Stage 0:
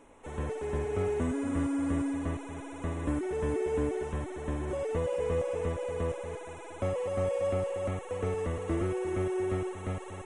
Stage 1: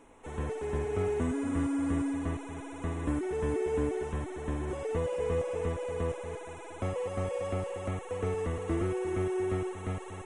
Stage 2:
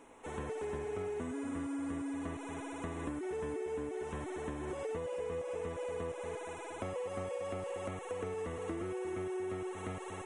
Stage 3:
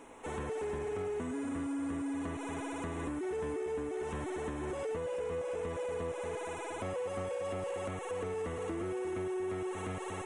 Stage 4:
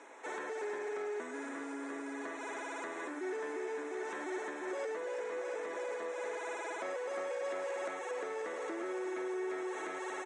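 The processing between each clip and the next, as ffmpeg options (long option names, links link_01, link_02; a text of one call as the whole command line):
ffmpeg -i in.wav -af "bandreject=frequency=570:width=12" out.wav
ffmpeg -i in.wav -af "lowshelf=frequency=120:gain=-11.5,acompressor=threshold=-37dB:ratio=6,volume=1dB" out.wav
ffmpeg -i in.wav -filter_complex "[0:a]asplit=2[link_01][link_02];[link_02]alimiter=level_in=11dB:limit=-24dB:level=0:latency=1,volume=-11dB,volume=-3dB[link_03];[link_01][link_03]amix=inputs=2:normalize=0,asoftclip=type=tanh:threshold=-29dB" out.wav
ffmpeg -i in.wav -af "highpass=frequency=380:width=0.5412,highpass=frequency=380:width=1.3066,equalizer=frequency=470:width_type=q:width=4:gain=-7,equalizer=frequency=750:width_type=q:width=4:gain=-4,equalizer=frequency=1100:width_type=q:width=4:gain=-5,equalizer=frequency=1700:width_type=q:width=4:gain=4,equalizer=frequency=2900:width_type=q:width=4:gain=-9,lowpass=frequency=7100:width=0.5412,lowpass=frequency=7100:width=1.3066,aecho=1:1:1104:0.282,volume=3.5dB" out.wav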